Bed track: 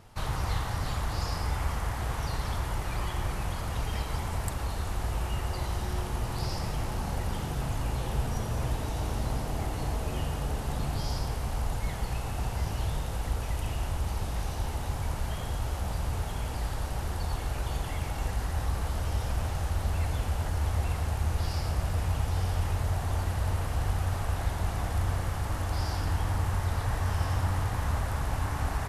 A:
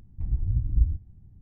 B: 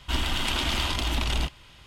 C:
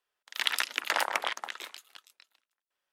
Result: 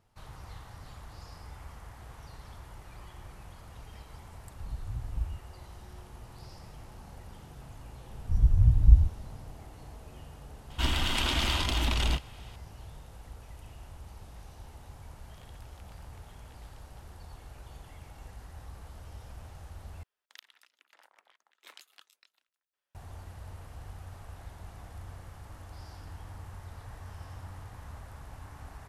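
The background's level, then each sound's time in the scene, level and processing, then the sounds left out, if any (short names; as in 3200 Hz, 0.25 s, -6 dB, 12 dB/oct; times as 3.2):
bed track -16 dB
4.4 add A -11 dB
8.11 add A -4 dB + low shelf 340 Hz +9 dB
10.7 add B -2 dB + bell 79 Hz +3 dB
15.02 add C -17 dB + compressor 5:1, threshold -44 dBFS
20.03 replace with C -5.5 dB + flipped gate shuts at -25 dBFS, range -28 dB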